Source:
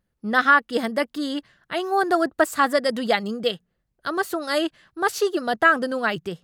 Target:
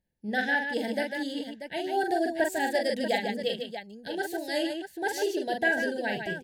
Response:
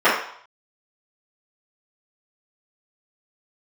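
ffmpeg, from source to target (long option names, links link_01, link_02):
-af "asuperstop=centerf=1200:order=20:qfactor=2.1,aecho=1:1:43|149|638:0.562|0.473|0.316,volume=-7.5dB"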